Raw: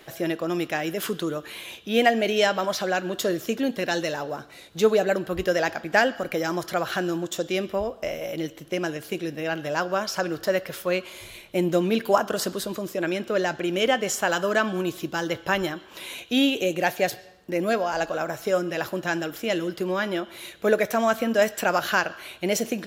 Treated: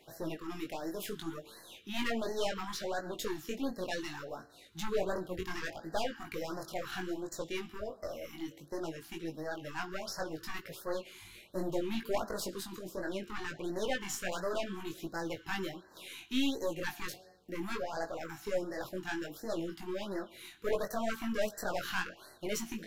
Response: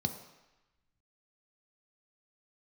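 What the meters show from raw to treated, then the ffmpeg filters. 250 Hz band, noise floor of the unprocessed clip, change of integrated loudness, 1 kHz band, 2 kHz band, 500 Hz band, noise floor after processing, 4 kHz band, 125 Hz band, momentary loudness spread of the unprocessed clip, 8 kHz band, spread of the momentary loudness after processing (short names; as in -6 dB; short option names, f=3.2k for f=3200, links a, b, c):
-11.5 dB, -47 dBFS, -13.0 dB, -14.0 dB, -14.0 dB, -13.5 dB, -58 dBFS, -11.5 dB, -12.5 dB, 9 LU, -10.5 dB, 8 LU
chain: -af "aeval=exprs='(tanh(8.91*val(0)+0.65)-tanh(0.65))/8.91':c=same,flanger=delay=18:depth=4:speed=0.66,afftfilt=real='re*(1-between(b*sr/1024,480*pow(2900/480,0.5+0.5*sin(2*PI*1.4*pts/sr))/1.41,480*pow(2900/480,0.5+0.5*sin(2*PI*1.4*pts/sr))*1.41))':imag='im*(1-between(b*sr/1024,480*pow(2900/480,0.5+0.5*sin(2*PI*1.4*pts/sr))/1.41,480*pow(2900/480,0.5+0.5*sin(2*PI*1.4*pts/sr))*1.41))':win_size=1024:overlap=0.75,volume=-4dB"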